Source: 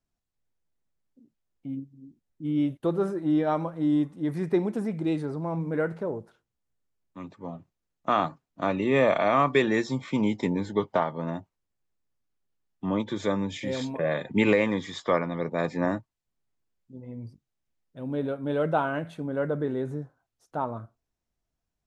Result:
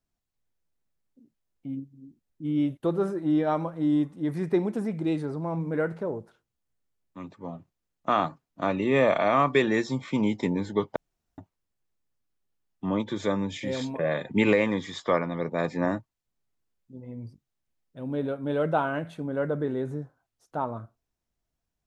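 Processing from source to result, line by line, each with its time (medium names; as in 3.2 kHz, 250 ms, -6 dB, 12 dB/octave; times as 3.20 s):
10.96–11.38 s: room tone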